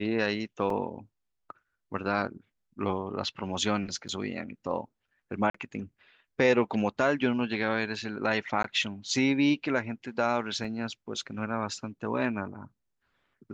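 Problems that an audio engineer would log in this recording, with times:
0:00.70: drop-out 2.7 ms
0:04.08–0:04.09: drop-out 7.9 ms
0:05.50–0:05.54: drop-out 44 ms
0:08.63–0:08.64: drop-out 13 ms
0:10.64: drop-out 4.4 ms

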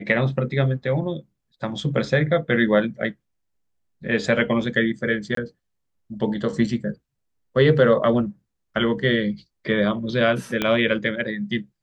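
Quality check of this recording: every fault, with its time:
0:05.35–0:05.37: drop-out 23 ms
0:10.62: click −8 dBFS

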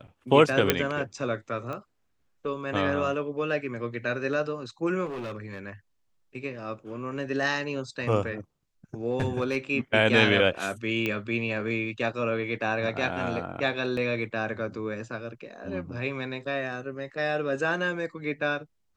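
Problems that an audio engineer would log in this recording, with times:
0:00.70: click −4 dBFS
0:01.73: click −23 dBFS
0:05.05–0:05.60: clipping −31.5 dBFS
0:09.10–0:09.57: clipping −20.5 dBFS
0:11.06: click −15 dBFS
0:13.97: drop-out 3.2 ms

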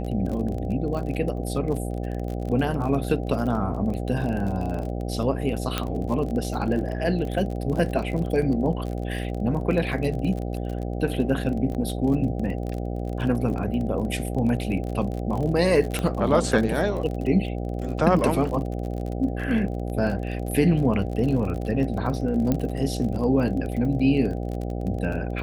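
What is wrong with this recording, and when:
mains buzz 60 Hz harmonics 13 −29 dBFS
surface crackle 32 per second −30 dBFS
0:05.78: click −9 dBFS
0:11.74–0:11.75: drop-out 8.2 ms
0:15.99: click −12 dBFS
0:22.52: click −11 dBFS

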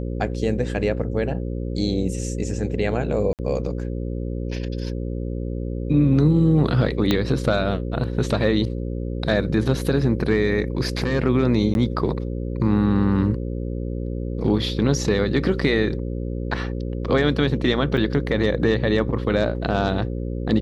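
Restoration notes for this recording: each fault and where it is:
mains buzz 60 Hz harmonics 9 −27 dBFS
0:03.33–0:03.39: drop-out 58 ms
0:07.11: click −6 dBFS
0:11.74–0:11.75: drop-out 11 ms
0:17.97: drop-out 4.2 ms

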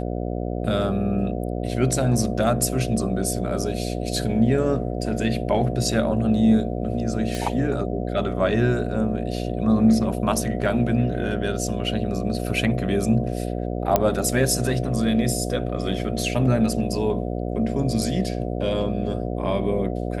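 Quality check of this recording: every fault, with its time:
mains buzz 60 Hz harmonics 12 −27 dBFS
0:07.35: click −14 dBFS
0:13.96: click −4 dBFS

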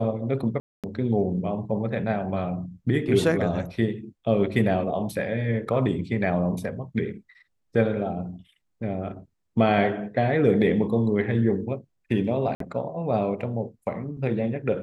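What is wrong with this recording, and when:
0:00.60–0:00.84: drop-out 237 ms
0:12.55–0:12.60: drop-out 53 ms

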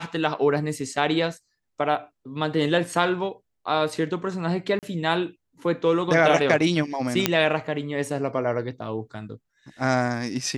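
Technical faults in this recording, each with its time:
0:04.79–0:04.83: drop-out 38 ms
0:07.26: click −2 dBFS

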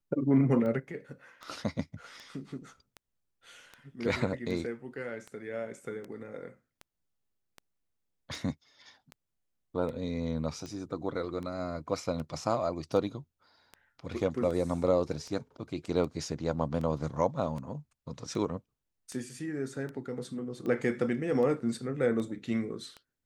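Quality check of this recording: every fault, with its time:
scratch tick 78 rpm −28 dBFS

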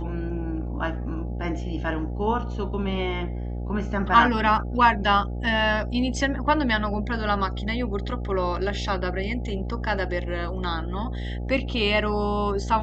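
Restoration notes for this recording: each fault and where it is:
mains buzz 60 Hz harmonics 14 −30 dBFS

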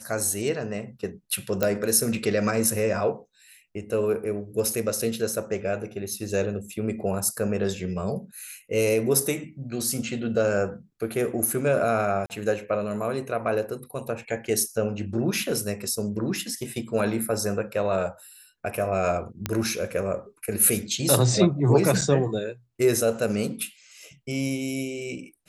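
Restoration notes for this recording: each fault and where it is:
0:01.63: click −8 dBFS
0:12.26–0:12.30: drop-out 39 ms
0:19.46: click −10 dBFS
0:22.01–0:22.02: drop-out 6.8 ms

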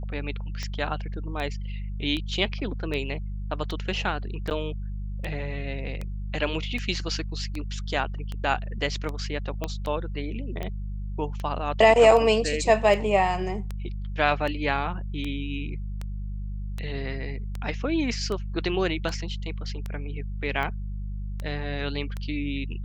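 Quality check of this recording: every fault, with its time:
mains hum 50 Hz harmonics 4 −32 dBFS
scratch tick 78 rpm −19 dBFS
0:04.50–0:04.51: drop-out 9.5 ms
0:09.64: click −14 dBFS

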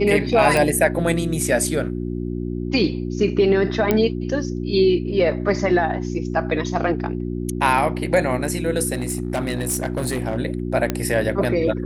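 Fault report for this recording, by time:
mains hum 60 Hz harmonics 6 −26 dBFS
0:00.57: click
0:03.91: click −5 dBFS
0:08.93–0:10.37: clipping −18 dBFS
0:10.90: click −7 dBFS

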